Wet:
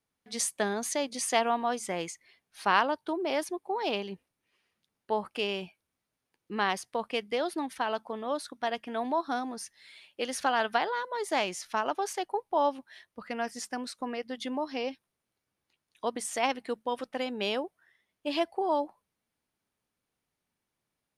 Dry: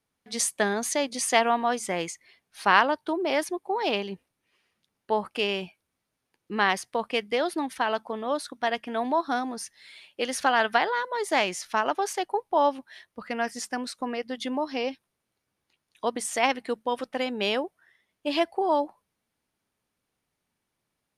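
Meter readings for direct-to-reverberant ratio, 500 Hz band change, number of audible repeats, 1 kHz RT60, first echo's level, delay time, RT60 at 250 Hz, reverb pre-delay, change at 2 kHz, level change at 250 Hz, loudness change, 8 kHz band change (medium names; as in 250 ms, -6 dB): no reverb, -4.0 dB, no echo, no reverb, no echo, no echo, no reverb, no reverb, -6.5 dB, -4.0 dB, -4.5 dB, -4.0 dB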